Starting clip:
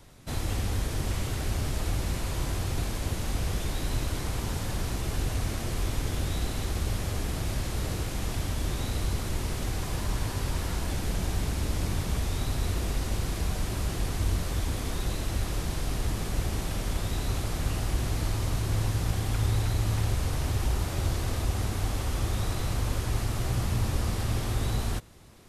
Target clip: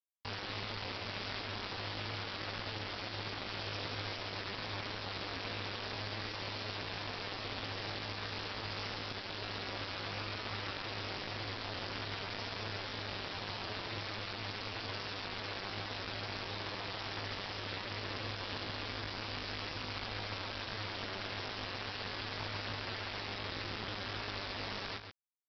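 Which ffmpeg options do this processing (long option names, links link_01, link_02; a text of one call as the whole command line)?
ffmpeg -i in.wav -filter_complex "[0:a]highpass=260,bandreject=frequency=2200:width=25,acrossover=split=1300[link_01][link_02];[link_01]alimiter=level_in=13.5dB:limit=-24dB:level=0:latency=1:release=41,volume=-13.5dB[link_03];[link_03][link_02]amix=inputs=2:normalize=0,aeval=exprs='max(val(0),0)':channel_layout=same,aresample=8000,acrusher=bits=6:mix=0:aa=0.000001,aresample=44100,aeval=exprs='val(0)*sin(2*PI*74*n/s)':channel_layout=same,asetrate=60591,aresample=44100,atempo=0.727827,asplit=2[link_04][link_05];[link_05]adelay=134.1,volume=-7dB,highshelf=frequency=4000:gain=-3.02[link_06];[link_04][link_06]amix=inputs=2:normalize=0,volume=5.5dB" out.wav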